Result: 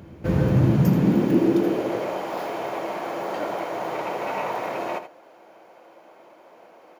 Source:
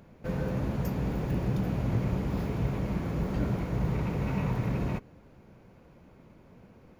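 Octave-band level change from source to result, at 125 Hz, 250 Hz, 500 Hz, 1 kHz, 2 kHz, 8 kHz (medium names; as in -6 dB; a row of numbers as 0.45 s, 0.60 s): +4.5 dB, +8.5 dB, +11.0 dB, +12.5 dB, +8.5 dB, no reading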